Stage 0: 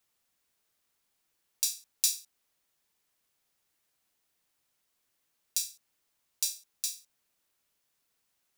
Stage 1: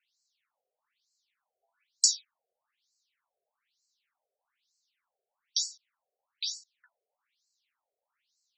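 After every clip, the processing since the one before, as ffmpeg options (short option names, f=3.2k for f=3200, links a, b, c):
-af "afreqshift=-120,afftfilt=real='re*between(b*sr/1024,530*pow(5800/530,0.5+0.5*sin(2*PI*1.1*pts/sr))/1.41,530*pow(5800/530,0.5+0.5*sin(2*PI*1.1*pts/sr))*1.41)':imag='im*between(b*sr/1024,530*pow(5800/530,0.5+0.5*sin(2*PI*1.1*pts/sr))/1.41,530*pow(5800/530,0.5+0.5*sin(2*PI*1.1*pts/sr))*1.41)':win_size=1024:overlap=0.75,volume=6dB"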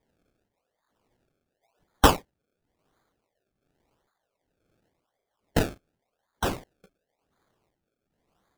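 -af "acrusher=samples=31:mix=1:aa=0.000001:lfo=1:lforange=31:lforate=0.91,volume=7dB"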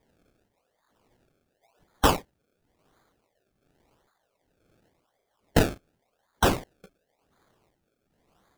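-af "alimiter=limit=-15dB:level=0:latency=1:release=193,volume=6dB"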